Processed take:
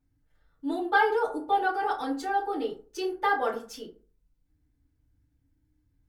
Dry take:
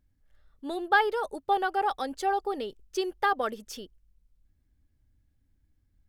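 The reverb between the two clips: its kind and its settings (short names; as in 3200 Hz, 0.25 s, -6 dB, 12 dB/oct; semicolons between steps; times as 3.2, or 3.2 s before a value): FDN reverb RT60 0.4 s, low-frequency decay 1×, high-frequency decay 0.5×, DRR -10 dB; gain -10 dB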